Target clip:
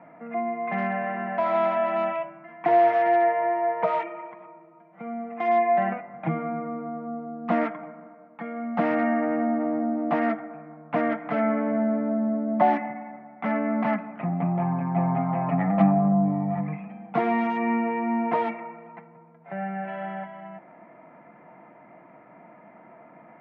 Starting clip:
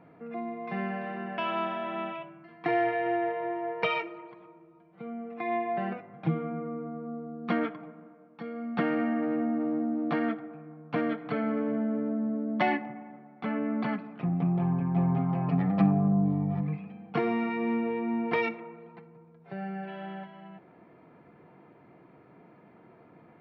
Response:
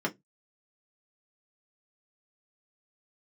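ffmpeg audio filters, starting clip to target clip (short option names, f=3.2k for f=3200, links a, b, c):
-filter_complex "[0:a]acrossover=split=1300[a][b];[b]aeval=exprs='(mod(63.1*val(0)+1,2)-1)/63.1':c=same[c];[a][c]amix=inputs=2:normalize=0,highpass=180,equalizer=f=210:t=q:w=4:g=4,equalizer=f=410:t=q:w=4:g=-9,equalizer=f=640:t=q:w=4:g=10,equalizer=f=910:t=q:w=4:g=6,equalizer=f=1.3k:t=q:w=4:g=3,equalizer=f=2k:t=q:w=4:g=8,lowpass=f=2.7k:w=0.5412,lowpass=f=2.7k:w=1.3066,volume=3dB"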